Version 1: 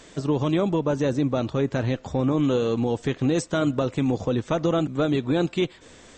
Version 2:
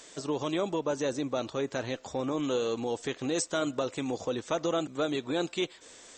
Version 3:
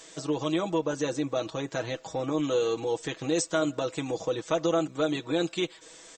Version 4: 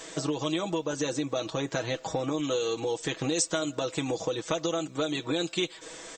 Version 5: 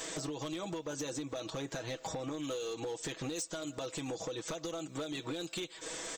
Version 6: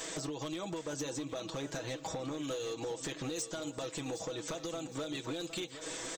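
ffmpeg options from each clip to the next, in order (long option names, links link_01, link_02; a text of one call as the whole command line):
ffmpeg -i in.wav -af "bass=frequency=250:gain=-13,treble=frequency=4000:gain=8,volume=-4.5dB" out.wav
ffmpeg -i in.wav -af "aecho=1:1:6.2:0.72" out.wav
ffmpeg -i in.wav -filter_complex "[0:a]acrossover=split=2600[link_01][link_02];[link_01]acompressor=threshold=-36dB:ratio=6[link_03];[link_02]flanger=delay=3.1:depth=5.3:regen=-71:speed=0.85:shape=triangular[link_04];[link_03][link_04]amix=inputs=2:normalize=0,volume=8.5dB" out.wav
ffmpeg -i in.wav -af "acompressor=threshold=-35dB:ratio=20,crystalizer=i=0.5:c=0,asoftclip=type=hard:threshold=-34dB,volume=1dB" out.wav
ffmpeg -i in.wav -af "aecho=1:1:763|1526|2289|3052:0.251|0.105|0.0443|0.0186" out.wav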